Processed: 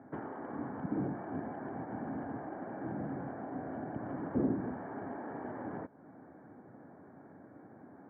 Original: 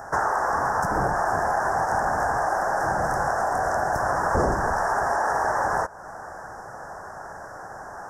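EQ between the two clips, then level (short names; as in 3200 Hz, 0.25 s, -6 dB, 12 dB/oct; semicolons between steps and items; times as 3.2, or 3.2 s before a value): vocal tract filter i; HPF 100 Hz 24 dB/oct; low shelf 380 Hz -4.5 dB; +7.0 dB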